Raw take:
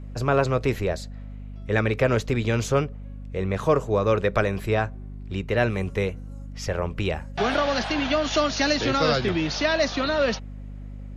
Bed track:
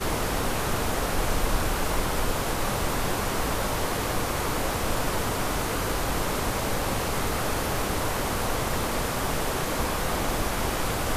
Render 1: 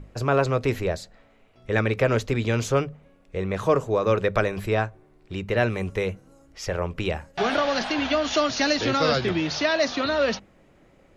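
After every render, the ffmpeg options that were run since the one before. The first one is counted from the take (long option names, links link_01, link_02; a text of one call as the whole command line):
ffmpeg -i in.wav -af "bandreject=frequency=50:width_type=h:width=6,bandreject=frequency=100:width_type=h:width=6,bandreject=frequency=150:width_type=h:width=6,bandreject=frequency=200:width_type=h:width=6,bandreject=frequency=250:width_type=h:width=6" out.wav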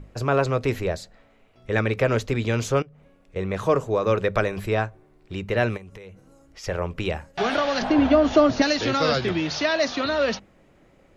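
ffmpeg -i in.wav -filter_complex "[0:a]asettb=1/sr,asplit=3[link_01][link_02][link_03];[link_01]atrim=end=2.824[link_04];[link_02]atrim=start=2.82:end=3.36,asetpts=PTS-STARTPTS,afade=type=in:duration=0.004:curve=qsin,afade=type=out:start_time=0.536:duration=0.004:curve=qsin,acompressor=threshold=-46dB:ratio=6:attack=3.2:release=140:knee=1:detection=peak[link_05];[link_03]atrim=start=3.356[link_06];[link_04][link_05]acrossfade=duration=0.004:curve1=hsin:curve2=qsin[link_07];[link_07][link_06]acrossfade=duration=0.004:curve1=qsin:curve2=hsin,asplit=3[link_08][link_09][link_10];[link_08]afade=type=out:start_time=5.76:duration=0.02[link_11];[link_09]acompressor=threshold=-38dB:ratio=16:attack=3.2:release=140:knee=1:detection=peak,afade=type=in:start_time=5.76:duration=0.02,afade=type=out:start_time=6.63:duration=0.02[link_12];[link_10]afade=type=in:start_time=6.63:duration=0.02[link_13];[link_11][link_12][link_13]amix=inputs=3:normalize=0,asettb=1/sr,asplit=3[link_14][link_15][link_16];[link_14]atrim=end=7.824[link_17];[link_15]atrim=start=7.82:end=8.62,asetpts=PTS-STARTPTS,afade=type=in:duration=0.004:curve=qsin,afade=type=out:start_time=0.796:duration=0.004:curve=qsin,tiltshelf=frequency=1400:gain=10[link_18];[link_16]atrim=start=8.616[link_19];[link_17][link_18]acrossfade=duration=0.004:curve1=hsin:curve2=qsin[link_20];[link_20][link_19]acrossfade=duration=0.004:curve1=qsin:curve2=hsin" out.wav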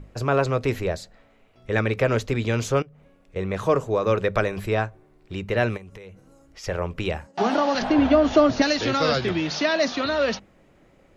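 ffmpeg -i in.wav -filter_complex "[0:a]asettb=1/sr,asplit=3[link_01][link_02][link_03];[link_01]atrim=end=7.274[link_04];[link_02]atrim=start=7.27:end=7.75,asetpts=PTS-STARTPTS,afade=type=in:duration=0.004:curve=qsin,afade=type=out:start_time=0.476:duration=0.004:curve=qsin,highpass=190,equalizer=frequency=210:width_type=q:width=4:gain=9,equalizer=frequency=300:width_type=q:width=4:gain=6,equalizer=frequency=890:width_type=q:width=4:gain=7,equalizer=frequency=1600:width_type=q:width=4:gain=-5,equalizer=frequency=2300:width_type=q:width=4:gain=-7,equalizer=frequency=3500:width_type=q:width=4:gain=-6,lowpass=frequency=8600:width=0.5412,lowpass=frequency=8600:width=1.3066[link_05];[link_03]atrim=start=7.746[link_06];[link_04][link_05]acrossfade=duration=0.004:curve1=hsin:curve2=qsin[link_07];[link_07][link_06]acrossfade=duration=0.004:curve1=qsin:curve2=hsin,asettb=1/sr,asplit=3[link_08][link_09][link_10];[link_08]atrim=end=9.514[link_11];[link_09]atrim=start=9.51:end=9.92,asetpts=PTS-STARTPTS,afade=type=in:duration=0.004:curve=qsin,afade=type=out:start_time=0.406:duration=0.004:curve=qsin,lowshelf=frequency=130:width_type=q:width=3:gain=-11[link_12];[link_10]atrim=start=9.916[link_13];[link_11][link_12]acrossfade=duration=0.004:curve1=hsin:curve2=qsin[link_14];[link_14][link_13]acrossfade=duration=0.004:curve1=qsin:curve2=hsin" out.wav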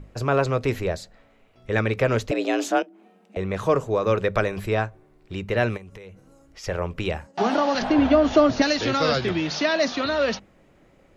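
ffmpeg -i in.wav -filter_complex "[0:a]asettb=1/sr,asplit=3[link_01][link_02][link_03];[link_01]atrim=end=2.314[link_04];[link_02]atrim=start=2.31:end=3.37,asetpts=PTS-STARTPTS,afade=type=in:duration=0.004:curve=qsin,afade=type=out:start_time=1.056:duration=0.004:curve=qsin,afreqshift=180[link_05];[link_03]atrim=start=3.366[link_06];[link_04][link_05]acrossfade=duration=0.004:curve1=hsin:curve2=qsin[link_07];[link_07][link_06]acrossfade=duration=0.004:curve1=qsin:curve2=hsin" out.wav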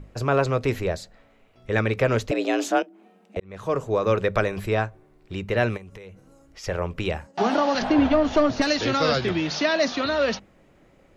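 ffmpeg -i in.wav -filter_complex "[0:a]asettb=1/sr,asplit=3[link_01][link_02][link_03];[link_01]atrim=end=8.084[link_04];[link_02]atrim=start=8.08:end=8.67,asetpts=PTS-STARTPTS,afade=type=in:duration=0.004:curve=qsin,afade=type=out:start_time=0.586:duration=0.004:curve=qsin,aeval=exprs='(tanh(3.16*val(0)+0.5)-tanh(0.5))/3.16':channel_layout=same[link_05];[link_03]atrim=start=8.666[link_06];[link_04][link_05]acrossfade=duration=0.004:curve1=hsin:curve2=qsin[link_07];[link_07][link_06]acrossfade=duration=0.004:curve1=qsin:curve2=hsin,asplit=2[link_08][link_09];[link_08]atrim=end=3.4,asetpts=PTS-STARTPTS,afade=type=out:start_time=3.396:duration=0.004:curve=hsin[link_10];[link_09]atrim=start=3.4,asetpts=PTS-STARTPTS,afade=type=in:duration=0.54[link_11];[link_10][link_11]concat=n=2:v=0:a=1" out.wav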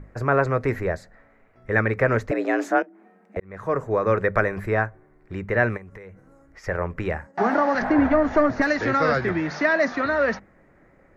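ffmpeg -i in.wav -af "highshelf=frequency=2400:width_type=q:width=3:gain=-8.5" out.wav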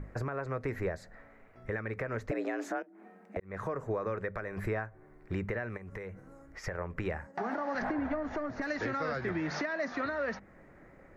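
ffmpeg -i in.wav -af "acompressor=threshold=-28dB:ratio=6,alimiter=limit=-24dB:level=0:latency=1:release=301" out.wav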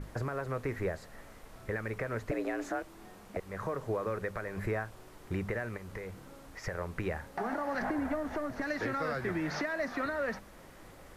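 ffmpeg -i in.wav -i bed.wav -filter_complex "[1:a]volume=-28.5dB[link_01];[0:a][link_01]amix=inputs=2:normalize=0" out.wav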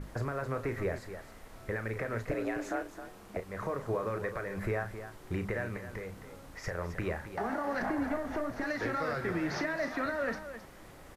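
ffmpeg -i in.wav -af "aecho=1:1:34.99|265.3:0.316|0.282" out.wav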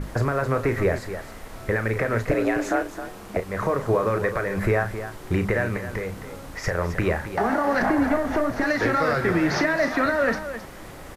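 ffmpeg -i in.wav -af "volume=11.5dB" out.wav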